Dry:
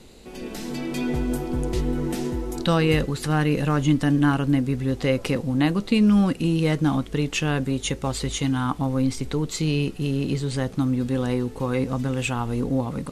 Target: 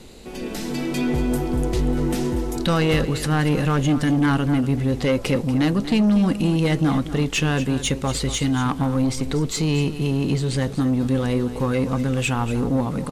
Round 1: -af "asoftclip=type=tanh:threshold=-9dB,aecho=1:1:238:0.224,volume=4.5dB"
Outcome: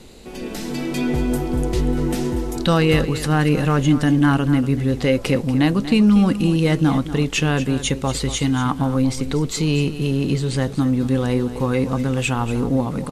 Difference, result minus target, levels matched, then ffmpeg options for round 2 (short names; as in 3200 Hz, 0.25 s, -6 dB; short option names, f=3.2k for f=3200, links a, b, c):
soft clip: distortion -13 dB
-af "asoftclip=type=tanh:threshold=-18dB,aecho=1:1:238:0.224,volume=4.5dB"